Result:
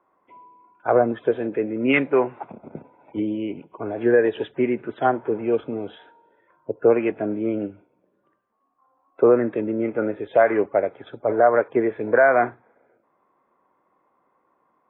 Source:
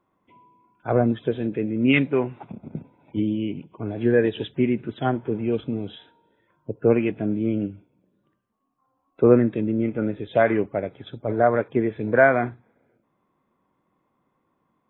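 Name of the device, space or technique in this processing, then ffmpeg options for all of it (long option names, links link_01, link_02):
DJ mixer with the lows and highs turned down: -filter_complex "[0:a]acrossover=split=380 2100:gain=0.141 1 0.0891[link_01][link_02][link_03];[link_01][link_02][link_03]amix=inputs=3:normalize=0,alimiter=limit=-14dB:level=0:latency=1:release=159,volume=8dB"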